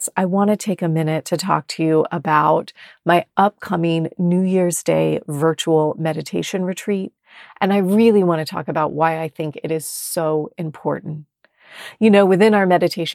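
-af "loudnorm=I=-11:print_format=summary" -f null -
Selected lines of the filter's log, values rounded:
Input Integrated:    -17.9 LUFS
Input True Peak:      -1.6 dBTP
Input LRA:             2.2 LU
Input Threshold:     -28.5 LUFS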